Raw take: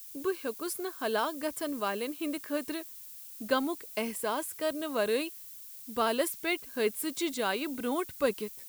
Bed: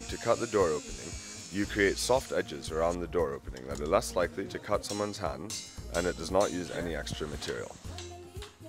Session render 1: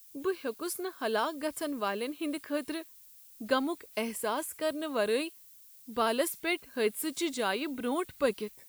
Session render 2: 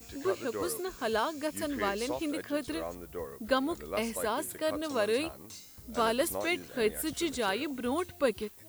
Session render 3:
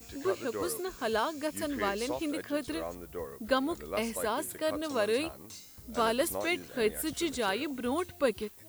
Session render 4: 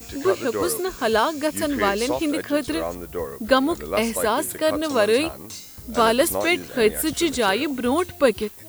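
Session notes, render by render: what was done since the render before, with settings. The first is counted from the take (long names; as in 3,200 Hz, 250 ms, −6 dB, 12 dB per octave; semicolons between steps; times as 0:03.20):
noise reduction from a noise print 8 dB
mix in bed −10 dB
no processing that can be heard
level +10.5 dB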